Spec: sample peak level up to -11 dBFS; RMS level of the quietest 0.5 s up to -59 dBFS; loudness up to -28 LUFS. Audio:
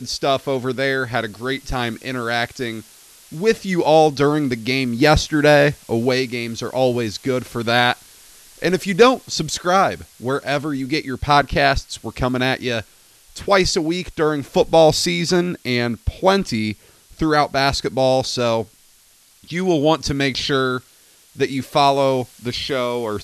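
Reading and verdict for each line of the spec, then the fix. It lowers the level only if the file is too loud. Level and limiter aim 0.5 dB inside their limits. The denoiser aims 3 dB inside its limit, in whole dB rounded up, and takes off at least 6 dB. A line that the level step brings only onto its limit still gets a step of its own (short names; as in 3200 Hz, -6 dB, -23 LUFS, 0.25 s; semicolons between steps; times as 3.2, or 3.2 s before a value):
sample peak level -2.0 dBFS: fail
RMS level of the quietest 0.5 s -53 dBFS: fail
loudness -19.0 LUFS: fail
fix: gain -9.5 dB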